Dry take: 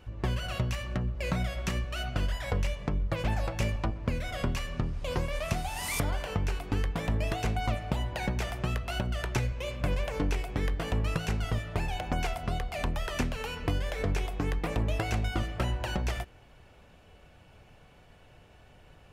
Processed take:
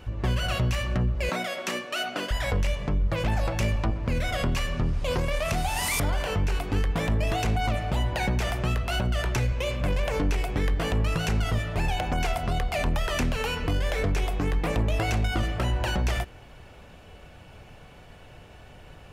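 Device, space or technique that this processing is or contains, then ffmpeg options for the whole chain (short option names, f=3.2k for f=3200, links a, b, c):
soft clipper into limiter: -filter_complex "[0:a]asettb=1/sr,asplit=3[a][b][c];[a]atrim=end=1.294[d];[b]atrim=start=1.29:end=2.31,asetpts=PTS-STARTPTS,afade=t=in:d=0.004:c=qsin,afade=t=out:st=1.016:d=0.004:c=qsin,highpass=f=250:w=0.5412,highpass=f=250:w=1.3066[e];[c]atrim=start=2.306[f];[d][e]acrossfade=d=0.004:c1=hsin:c2=qsin[g];[g][f]acrossfade=d=0.004:c1=qsin:c2=hsin,asoftclip=type=tanh:threshold=-18dB,alimiter=level_in=2dB:limit=-24dB:level=0:latency=1:release=26,volume=-2dB,volume=8dB"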